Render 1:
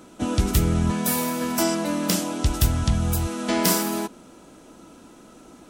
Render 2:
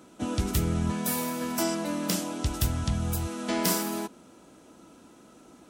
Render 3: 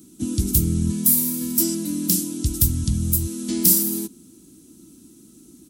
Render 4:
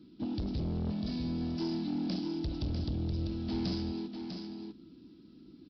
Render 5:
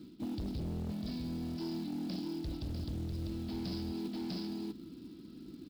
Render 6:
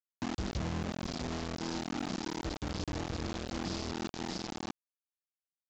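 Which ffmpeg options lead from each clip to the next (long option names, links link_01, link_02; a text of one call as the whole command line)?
ffmpeg -i in.wav -af "highpass=54,volume=-5.5dB" out.wav
ffmpeg -i in.wav -af "firequalizer=gain_entry='entry(330,0);entry(550,-25);entry(4100,-3);entry(11000,10)':delay=0.05:min_phase=1,volume=6dB" out.wav
ffmpeg -i in.wav -af "aresample=11025,asoftclip=type=tanh:threshold=-24dB,aresample=44100,aecho=1:1:648:0.473,volume=-6dB" out.wav
ffmpeg -i in.wav -af "areverse,acompressor=threshold=-41dB:ratio=8,areverse,acrusher=bits=6:mode=log:mix=0:aa=0.000001,volume=5dB" out.wav
ffmpeg -i in.wav -af "acrusher=bits=5:mix=0:aa=0.000001,aresample=16000,aresample=44100" out.wav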